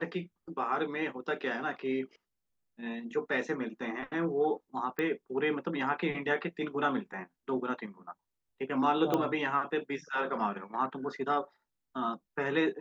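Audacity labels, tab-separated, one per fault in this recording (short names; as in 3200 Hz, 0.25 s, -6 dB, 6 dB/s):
4.990000	4.990000	pop -20 dBFS
9.140000	9.140000	pop -16 dBFS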